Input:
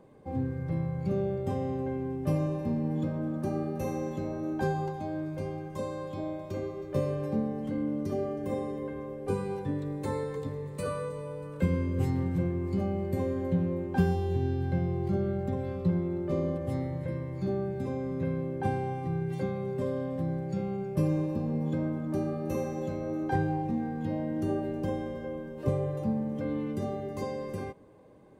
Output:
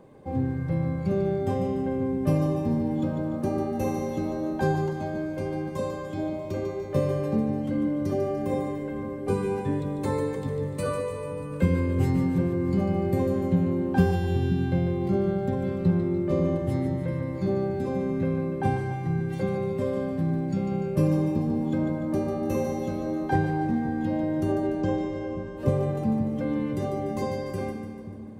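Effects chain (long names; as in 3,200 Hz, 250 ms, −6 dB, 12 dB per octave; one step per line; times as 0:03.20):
0:24.52–0:25.57: Butterworth low-pass 7,900 Hz 48 dB per octave
echo with a time of its own for lows and highs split 310 Hz, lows 529 ms, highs 147 ms, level −7.5 dB
level +4.5 dB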